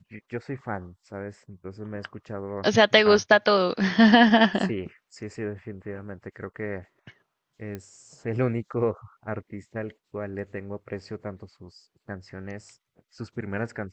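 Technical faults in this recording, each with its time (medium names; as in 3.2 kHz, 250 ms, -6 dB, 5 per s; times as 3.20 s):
7.75 s: pop -22 dBFS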